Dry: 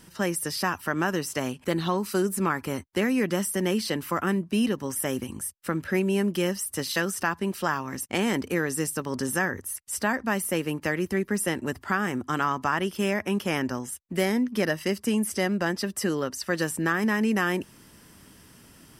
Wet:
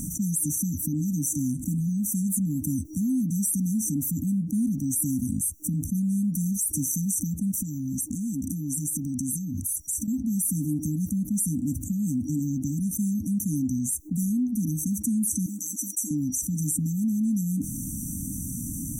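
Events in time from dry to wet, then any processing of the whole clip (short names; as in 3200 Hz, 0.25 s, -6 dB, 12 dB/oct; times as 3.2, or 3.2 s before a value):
7.6–10.08 compressor, threshold -36 dBFS
15.46–16.11 elliptic high-pass 340 Hz, stop band 60 dB
whole clip: FFT band-reject 310–5800 Hz; fast leveller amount 70%; gain -1.5 dB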